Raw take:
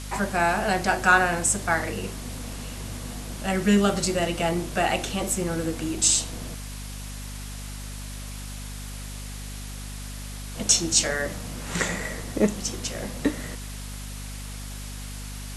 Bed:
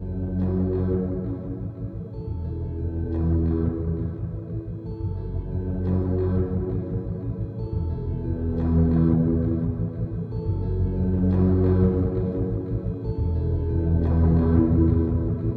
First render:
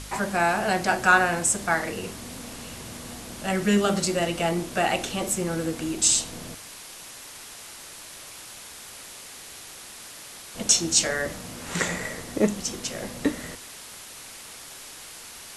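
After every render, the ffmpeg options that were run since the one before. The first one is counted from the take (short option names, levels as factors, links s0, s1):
-af "bandreject=f=50:t=h:w=4,bandreject=f=100:t=h:w=4,bandreject=f=150:t=h:w=4,bandreject=f=200:t=h:w=4,bandreject=f=250:t=h:w=4"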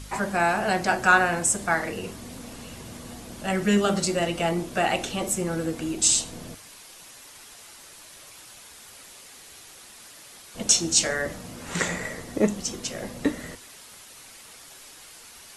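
-af "afftdn=nr=6:nf=-43"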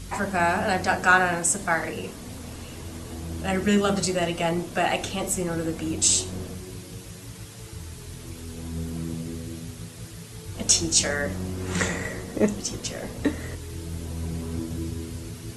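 -filter_complex "[1:a]volume=0.237[s0];[0:a][s0]amix=inputs=2:normalize=0"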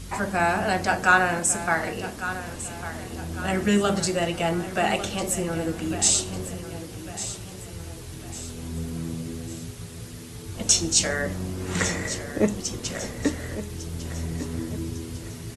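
-af "aecho=1:1:1151|2302|3453|4604:0.237|0.107|0.048|0.0216"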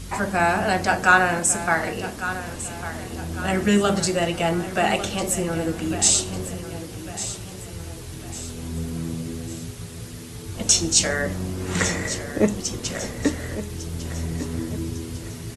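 -af "volume=1.33,alimiter=limit=0.794:level=0:latency=1"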